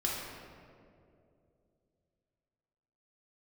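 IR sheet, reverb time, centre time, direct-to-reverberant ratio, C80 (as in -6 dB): 2.6 s, 0.108 s, -4.0 dB, 1.5 dB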